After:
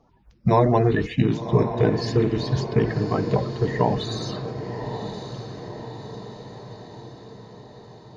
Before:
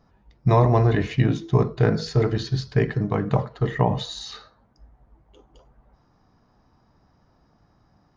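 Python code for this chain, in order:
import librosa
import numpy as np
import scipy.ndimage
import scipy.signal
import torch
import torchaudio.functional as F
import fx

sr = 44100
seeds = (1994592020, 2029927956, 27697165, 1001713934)

p1 = fx.spec_quant(x, sr, step_db=30)
y = p1 + fx.echo_diffused(p1, sr, ms=1092, feedback_pct=57, wet_db=-9, dry=0)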